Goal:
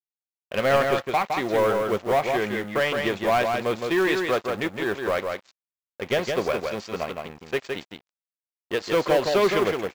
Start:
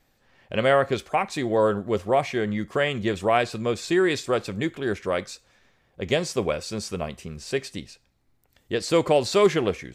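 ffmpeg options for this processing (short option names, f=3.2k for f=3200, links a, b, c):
-filter_complex "[0:a]aemphasis=mode=reproduction:type=cd,aresample=16000,aeval=exprs='sgn(val(0))*max(abs(val(0))-0.0106,0)':c=same,aresample=44100,asplit=2[a][b];[b]highpass=f=720:p=1,volume=17dB,asoftclip=type=tanh:threshold=-8dB[c];[a][c]amix=inputs=2:normalize=0,lowpass=f=4.5k:p=1,volume=-6dB,acrusher=bits=6:mode=log:mix=0:aa=0.000001,aecho=1:1:164:0.596,volume=-4.5dB"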